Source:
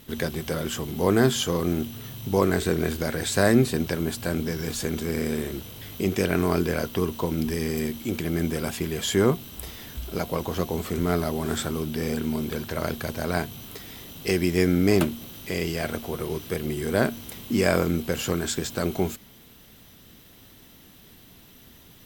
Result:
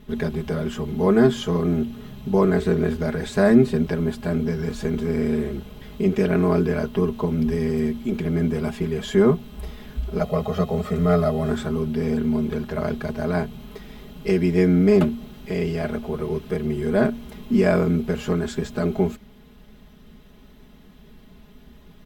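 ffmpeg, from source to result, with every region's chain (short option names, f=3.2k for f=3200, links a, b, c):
-filter_complex "[0:a]asettb=1/sr,asplit=3[a][b][c];[a]atrim=end=10.214[d];[b]atrim=start=10.21:end=11.5,asetpts=PTS-STARTPTS,afade=t=in:d=0.004:c=qsin,afade=t=out:st=1.286:d=0.004:c=qsin,highpass=79,aecho=1:1:1.6:0.96,atrim=end_sample=56889[e];[c]atrim=start=11.496[f];[d][e]acrossfade=d=0.004:c1=hsin:c2=qsin[g];[g][f]acrossfade=d=0.004:c1=qsin:c2=hsin,lowpass=f=1.4k:p=1,lowshelf=f=86:g=9,aecho=1:1:4.8:0.97"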